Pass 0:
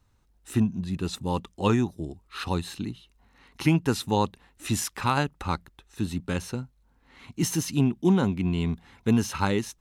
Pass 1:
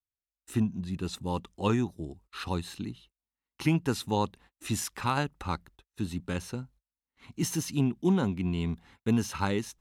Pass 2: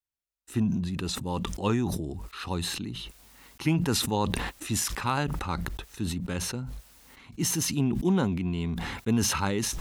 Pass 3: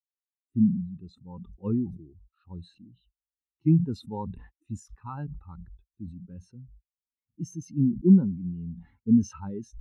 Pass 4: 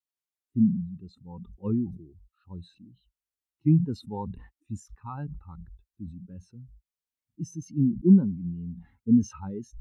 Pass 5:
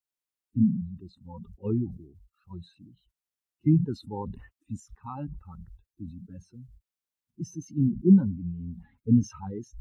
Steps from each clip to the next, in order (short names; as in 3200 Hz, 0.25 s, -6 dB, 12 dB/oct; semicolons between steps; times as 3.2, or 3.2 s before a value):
gate -50 dBFS, range -35 dB; gain -4 dB
sustainer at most 30 dB/s
spectral expander 2.5:1
vibrato 2.1 Hz 43 cents
bin magnitudes rounded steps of 30 dB